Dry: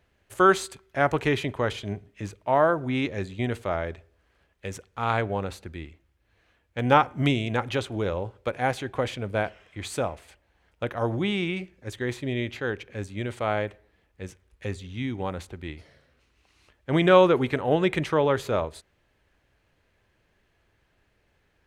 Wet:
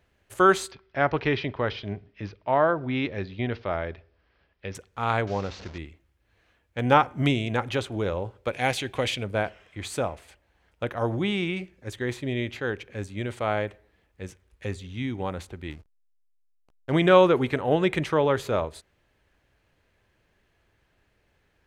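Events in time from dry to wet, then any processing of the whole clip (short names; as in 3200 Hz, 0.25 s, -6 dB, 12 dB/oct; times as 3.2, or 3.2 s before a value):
0.71–4.75 elliptic low-pass 5300 Hz
5.27–5.78 delta modulation 32 kbps, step -37 dBFS
8.51–9.24 resonant high shelf 1900 Hz +7 dB, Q 1.5
15.7–16.92 backlash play -40.5 dBFS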